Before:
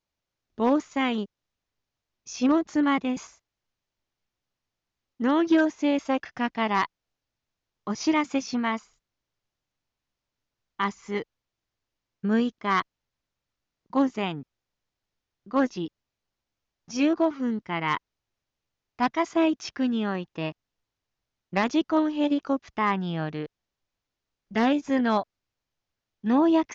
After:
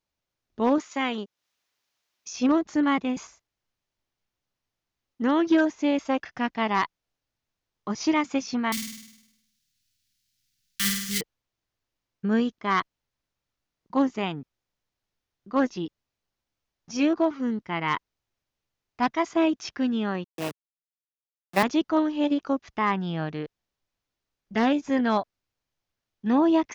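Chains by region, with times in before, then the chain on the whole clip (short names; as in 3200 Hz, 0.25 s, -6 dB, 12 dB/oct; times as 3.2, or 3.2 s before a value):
0.78–2.33 HPF 310 Hz 6 dB/oct + mismatched tape noise reduction encoder only
8.72–11.21 block floating point 3-bit + EQ curve 220 Hz 0 dB, 450 Hz -20 dB, 950 Hz -29 dB, 1500 Hz -3 dB, 4400 Hz +11 dB + flutter echo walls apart 8.7 m, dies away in 0.86 s
20.24–21.63 level-crossing sampler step -28.5 dBFS + HPF 170 Hz + three-band expander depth 40%
whole clip: dry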